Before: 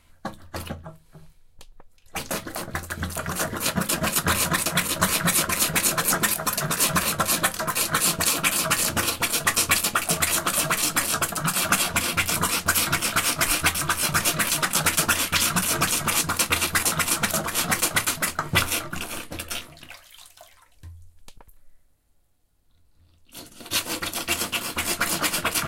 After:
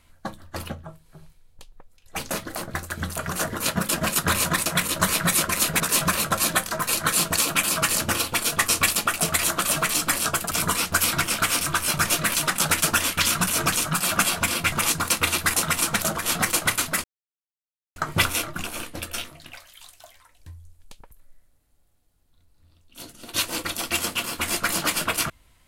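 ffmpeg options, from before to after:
ffmpeg -i in.wav -filter_complex "[0:a]asplit=7[link_01][link_02][link_03][link_04][link_05][link_06][link_07];[link_01]atrim=end=5.802[link_08];[link_02]atrim=start=6.678:end=11.392[link_09];[link_03]atrim=start=12.248:end=13.352[link_10];[link_04]atrim=start=13.758:end=16.012[link_11];[link_05]atrim=start=11.388:end=12.252[link_12];[link_06]atrim=start=16.008:end=18.33,asetpts=PTS-STARTPTS,afade=type=out:start_time=2.318:duration=0.004:curve=hsin,apad=pad_dur=0.92[link_13];[link_07]atrim=start=18.33,asetpts=PTS-STARTPTS,afade=type=in:duration=0.004:curve=hsin[link_14];[link_08][link_09]acrossfade=duration=0.004:curve1=hsin:curve2=hsin[link_15];[link_15][link_10]acrossfade=duration=0.004:curve1=hsin:curve2=hsin[link_16];[link_16][link_11]acrossfade=duration=0.004:curve1=hsin:curve2=hsin[link_17];[link_17][link_12]acrossfade=duration=0.004:curve1=hsin:curve2=hsin[link_18];[link_13][link_14]concat=n=2:v=0:a=1[link_19];[link_18][link_19]acrossfade=duration=0.004:curve1=hsin:curve2=hsin" out.wav

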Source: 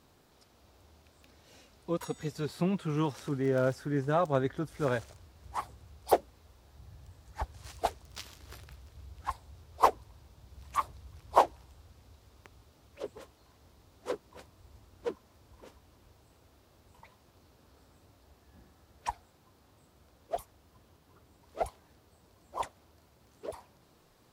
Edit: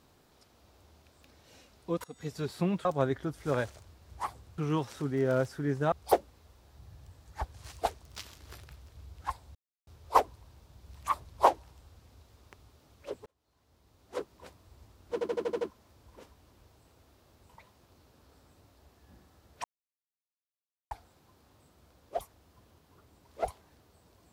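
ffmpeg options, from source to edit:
ffmpeg -i in.wav -filter_complex "[0:a]asplit=15[link_01][link_02][link_03][link_04][link_05][link_06][link_07][link_08][link_09][link_10][link_11][link_12][link_13][link_14][link_15];[link_01]atrim=end=2.04,asetpts=PTS-STARTPTS,afade=type=out:start_time=2.036:duration=0.004:curve=hsin:silence=0.0794328[link_16];[link_02]atrim=start=2.04:end=2.852,asetpts=PTS-STARTPTS,afade=type=in:duration=0.29:silence=0.0794328[link_17];[link_03]atrim=start=4.188:end=5.922[link_18];[link_04]atrim=start=2.848:end=4.192[link_19];[link_05]atrim=start=5.918:end=9.55,asetpts=PTS-STARTPTS,afade=type=out:start_time=3.628:duration=0.004:curve=hsin,apad=pad_dur=0.32[link_20];[link_06]atrim=start=9.55:end=10.972,asetpts=PTS-STARTPTS,afade=type=in:duration=0.004:curve=hsin[link_21];[link_07]atrim=start=11.218:end=13.19,asetpts=PTS-STARTPTS,afade=type=out:start_time=1.968:duration=0.004:curve=hsin[link_22];[link_08]atrim=start=13.19:end=15.142,asetpts=PTS-STARTPTS,afade=type=in:duration=1.07[link_23];[link_09]atrim=start=15.058:end=15.142[link_24];[link_10]atrim=start=15.058:end=15.142[link_25];[link_11]atrim=start=15.058:end=15.142[link_26];[link_12]atrim=start=15.058:end=15.142[link_27];[link_13]atrim=start=15.058:end=15.142[link_28];[link_14]atrim=start=15.058:end=19.09,asetpts=PTS-STARTPTS,afade=type=out:start_time=4.028:duration=0.004:curve=hsin,apad=pad_dur=1.27[link_29];[link_15]atrim=start=19.09,asetpts=PTS-STARTPTS,afade=type=in:duration=0.004:curve=hsin[link_30];[link_16][link_17]concat=n=2:v=0:a=1[link_31];[link_31][link_18]acrossfade=duration=0.004:curve1=hsin:curve2=hsin[link_32];[link_32][link_19]acrossfade=duration=0.004:curve1=hsin:curve2=hsin[link_33];[link_20][link_21]concat=n=2:v=0:a=1[link_34];[link_33][link_34]acrossfade=duration=0.004:curve1=hsin:curve2=hsin[link_35];[link_22][link_23]concat=n=2:v=0:a=1[link_36];[link_35][link_36]acrossfade=duration=0.004:curve1=hsin:curve2=hsin[link_37];[link_37][link_24]acrossfade=duration=0.004:curve1=hsin:curve2=hsin[link_38];[link_38][link_25]acrossfade=duration=0.004:curve1=hsin:curve2=hsin[link_39];[link_39][link_26]acrossfade=duration=0.004:curve1=hsin:curve2=hsin[link_40];[link_40][link_27]acrossfade=duration=0.004:curve1=hsin:curve2=hsin[link_41];[link_41][link_28]acrossfade=duration=0.004:curve1=hsin:curve2=hsin[link_42];[link_29][link_30]concat=n=2:v=0:a=1[link_43];[link_42][link_43]acrossfade=duration=0.004:curve1=hsin:curve2=hsin" out.wav

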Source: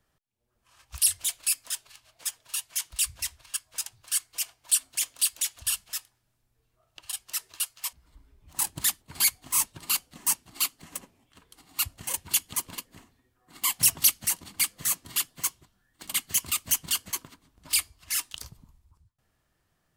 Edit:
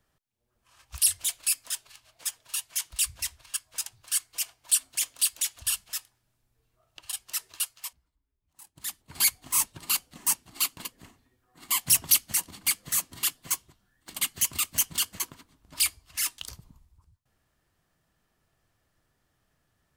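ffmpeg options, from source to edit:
ffmpeg -i in.wav -filter_complex "[0:a]asplit=4[link_01][link_02][link_03][link_04];[link_01]atrim=end=8.12,asetpts=PTS-STARTPTS,afade=type=out:start_time=7.64:duration=0.48:silence=0.0668344[link_05];[link_02]atrim=start=8.12:end=8.74,asetpts=PTS-STARTPTS,volume=-23.5dB[link_06];[link_03]atrim=start=8.74:end=10.772,asetpts=PTS-STARTPTS,afade=type=in:duration=0.48:silence=0.0668344[link_07];[link_04]atrim=start=12.698[link_08];[link_05][link_06][link_07]concat=n=3:v=0:a=1[link_09];[link_09][link_08]acrossfade=duration=0.004:curve1=hsin:curve2=hsin" out.wav

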